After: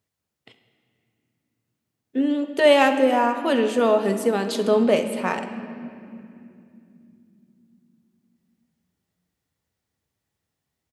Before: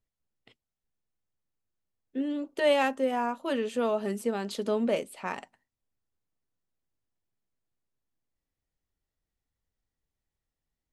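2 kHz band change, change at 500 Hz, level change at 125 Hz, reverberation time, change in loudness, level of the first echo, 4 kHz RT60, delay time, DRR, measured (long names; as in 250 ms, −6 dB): +9.0 dB, +9.0 dB, +9.0 dB, 2.9 s, +9.0 dB, −17.0 dB, 1.8 s, 68 ms, 8.0 dB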